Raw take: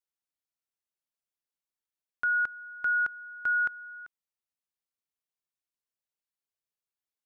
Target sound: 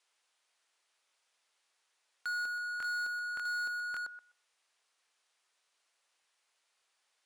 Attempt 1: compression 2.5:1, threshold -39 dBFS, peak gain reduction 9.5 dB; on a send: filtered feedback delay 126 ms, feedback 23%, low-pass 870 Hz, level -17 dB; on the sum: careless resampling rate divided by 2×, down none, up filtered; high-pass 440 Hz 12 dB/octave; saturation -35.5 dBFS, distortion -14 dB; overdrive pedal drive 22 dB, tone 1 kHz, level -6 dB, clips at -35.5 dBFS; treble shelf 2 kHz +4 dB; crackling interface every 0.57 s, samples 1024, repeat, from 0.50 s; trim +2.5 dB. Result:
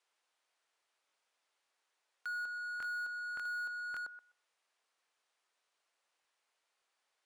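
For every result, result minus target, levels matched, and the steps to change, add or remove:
compression: peak gain reduction +9.5 dB; 4 kHz band -5.0 dB
remove: compression 2.5:1, threshold -39 dBFS, peak gain reduction 9.5 dB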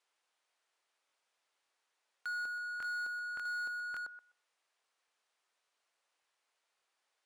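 4 kHz band -3.5 dB
change: treble shelf 2 kHz +11.5 dB

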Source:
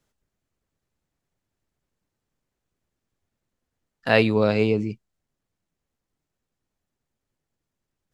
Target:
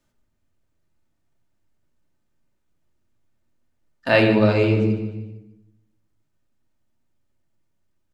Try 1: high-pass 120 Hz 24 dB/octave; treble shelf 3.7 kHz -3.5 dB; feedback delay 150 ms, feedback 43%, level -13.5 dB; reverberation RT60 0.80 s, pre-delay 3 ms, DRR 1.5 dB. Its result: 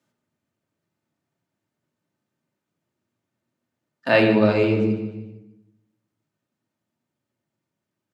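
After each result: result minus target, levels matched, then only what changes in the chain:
125 Hz band -4.0 dB; 8 kHz band -2.0 dB
remove: high-pass 120 Hz 24 dB/octave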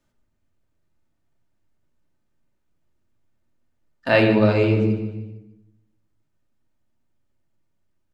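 8 kHz band -2.5 dB
remove: treble shelf 3.7 kHz -3.5 dB

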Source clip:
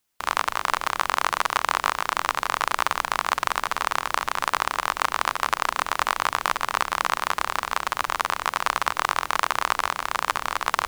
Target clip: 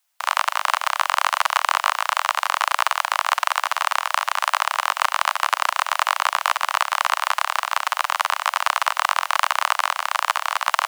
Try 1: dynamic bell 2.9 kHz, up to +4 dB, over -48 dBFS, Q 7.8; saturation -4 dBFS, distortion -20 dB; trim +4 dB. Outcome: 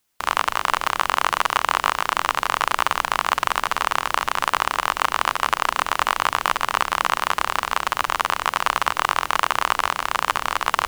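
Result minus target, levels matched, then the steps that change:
500 Hz band +3.0 dB
add after dynamic bell: steep high-pass 600 Hz 72 dB/octave

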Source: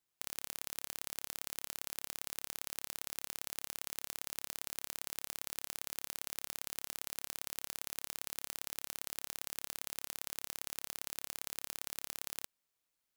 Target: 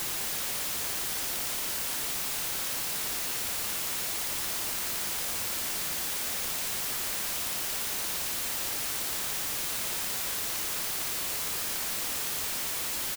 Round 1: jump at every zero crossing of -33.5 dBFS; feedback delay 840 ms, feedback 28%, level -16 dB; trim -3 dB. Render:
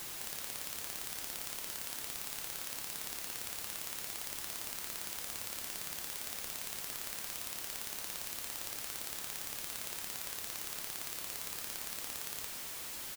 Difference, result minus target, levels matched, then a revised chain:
jump at every zero crossing: distortion -10 dB
jump at every zero crossing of -22.5 dBFS; feedback delay 840 ms, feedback 28%, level -16 dB; trim -3 dB

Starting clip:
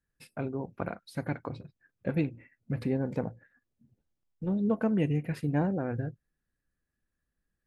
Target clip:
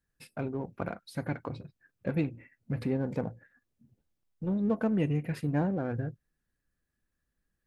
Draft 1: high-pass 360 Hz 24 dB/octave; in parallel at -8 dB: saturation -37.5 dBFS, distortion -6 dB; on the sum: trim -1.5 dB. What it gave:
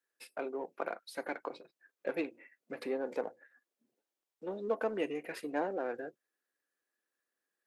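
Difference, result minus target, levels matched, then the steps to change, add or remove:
500 Hz band +5.5 dB
remove: high-pass 360 Hz 24 dB/octave

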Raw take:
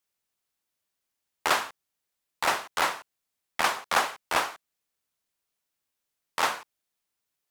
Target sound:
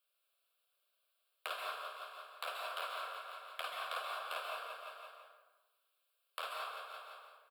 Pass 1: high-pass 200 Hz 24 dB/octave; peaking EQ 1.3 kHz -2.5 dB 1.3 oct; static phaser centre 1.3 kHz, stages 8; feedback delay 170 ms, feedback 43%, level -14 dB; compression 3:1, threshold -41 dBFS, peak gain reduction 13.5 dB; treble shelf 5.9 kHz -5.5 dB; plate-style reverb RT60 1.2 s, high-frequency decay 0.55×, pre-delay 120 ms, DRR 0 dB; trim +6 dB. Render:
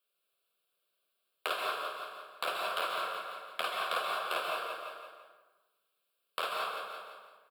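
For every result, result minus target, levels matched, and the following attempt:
250 Hz band +13.0 dB; compression: peak gain reduction -7.5 dB
high-pass 520 Hz 24 dB/octave; peaking EQ 1.3 kHz -2.5 dB 1.3 oct; static phaser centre 1.3 kHz, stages 8; feedback delay 170 ms, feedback 43%, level -14 dB; compression 3:1, threshold -41 dBFS, peak gain reduction 13.5 dB; treble shelf 5.9 kHz -5.5 dB; plate-style reverb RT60 1.2 s, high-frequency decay 0.55×, pre-delay 120 ms, DRR 0 dB; trim +6 dB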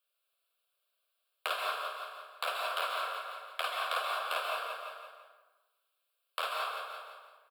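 compression: peak gain reduction -7.5 dB
high-pass 520 Hz 24 dB/octave; peaking EQ 1.3 kHz -2.5 dB 1.3 oct; static phaser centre 1.3 kHz, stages 8; feedback delay 170 ms, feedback 43%, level -14 dB; compression 3:1, threshold -52.5 dBFS, peak gain reduction 21 dB; treble shelf 5.9 kHz -5.5 dB; plate-style reverb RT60 1.2 s, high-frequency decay 0.55×, pre-delay 120 ms, DRR 0 dB; trim +6 dB

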